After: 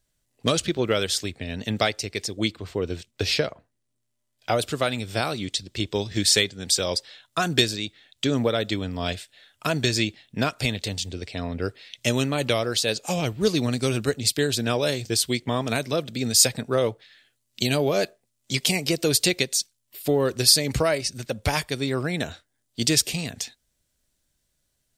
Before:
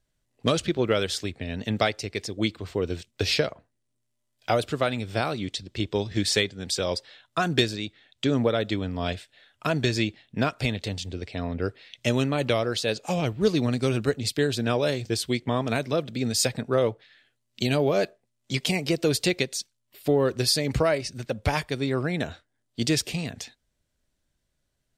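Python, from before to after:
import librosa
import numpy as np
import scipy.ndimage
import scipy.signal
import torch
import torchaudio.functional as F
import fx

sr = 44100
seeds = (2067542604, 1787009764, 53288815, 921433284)

y = fx.high_shelf(x, sr, hz=4400.0, db=fx.steps((0.0, 9.0), (2.51, 2.0), (4.58, 11.5)))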